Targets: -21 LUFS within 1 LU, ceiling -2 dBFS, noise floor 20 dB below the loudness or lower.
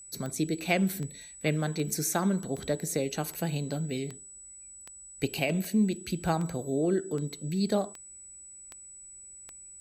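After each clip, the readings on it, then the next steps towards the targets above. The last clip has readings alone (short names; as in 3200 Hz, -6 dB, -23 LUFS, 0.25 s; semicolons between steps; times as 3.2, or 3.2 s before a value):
clicks 13; steady tone 7900 Hz; tone level -46 dBFS; loudness -30.5 LUFS; peak -13.0 dBFS; loudness target -21.0 LUFS
-> de-click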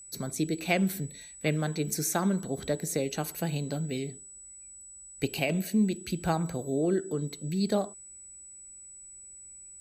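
clicks 0; steady tone 7900 Hz; tone level -46 dBFS
-> notch 7900 Hz, Q 30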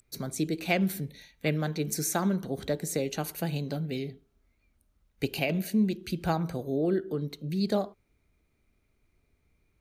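steady tone none; loudness -30.5 LUFS; peak -13.0 dBFS; loudness target -21.0 LUFS
-> gain +9.5 dB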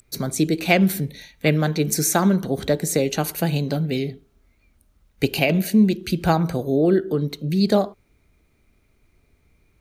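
loudness -21.0 LUFS; peak -3.5 dBFS; noise floor -63 dBFS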